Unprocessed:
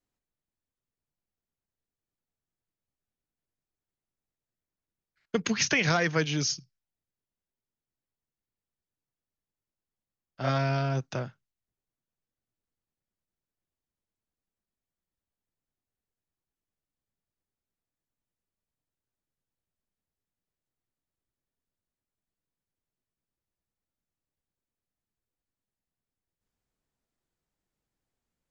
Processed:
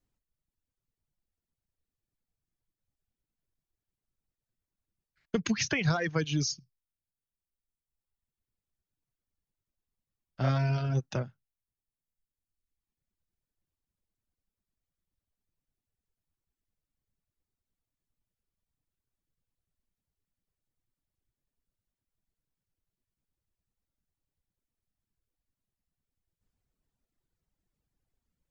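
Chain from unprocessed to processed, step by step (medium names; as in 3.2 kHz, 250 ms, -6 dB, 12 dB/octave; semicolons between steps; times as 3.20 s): reverb removal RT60 1.5 s; compression 2:1, threshold -31 dBFS, peak gain reduction 6 dB; bass shelf 200 Hz +11 dB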